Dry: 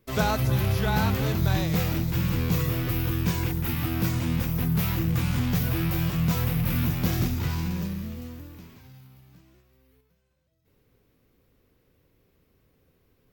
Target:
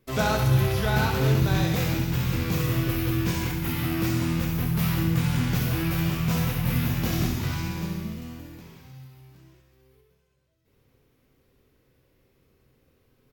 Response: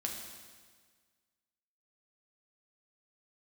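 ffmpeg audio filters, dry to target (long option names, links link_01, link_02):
-filter_complex "[0:a]bandreject=frequency=60:width_type=h:width=6,bandreject=frequency=120:width_type=h:width=6,bandreject=frequency=180:width_type=h:width=6,aecho=1:1:67|134|201|268|335|402|469|536:0.447|0.268|0.161|0.0965|0.0579|0.0347|0.0208|0.0125,asplit=2[link_01][link_02];[1:a]atrim=start_sample=2205,atrim=end_sample=3528,asetrate=26019,aresample=44100[link_03];[link_02][link_03]afir=irnorm=-1:irlink=0,volume=0.5dB[link_04];[link_01][link_04]amix=inputs=2:normalize=0,volume=-7dB"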